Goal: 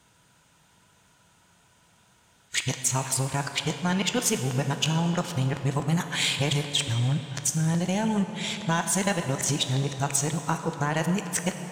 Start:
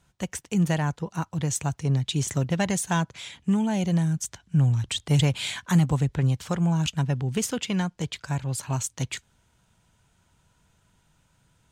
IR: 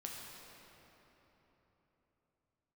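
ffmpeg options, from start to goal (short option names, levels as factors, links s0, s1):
-filter_complex "[0:a]areverse,highpass=f=160:p=1,acompressor=threshold=0.0355:ratio=6,aeval=exprs='0.119*(cos(1*acos(clip(val(0)/0.119,-1,1)))-cos(1*PI/2))+0.00473*(cos(3*acos(clip(val(0)/0.119,-1,1)))-cos(3*PI/2))+0.00211*(cos(7*acos(clip(val(0)/0.119,-1,1)))-cos(7*PI/2))':c=same,asplit=2[s0][s1];[1:a]atrim=start_sample=2205,lowshelf=f=210:g=-12[s2];[s1][s2]afir=irnorm=-1:irlink=0,volume=1.26[s3];[s0][s3]amix=inputs=2:normalize=0,volume=1.78"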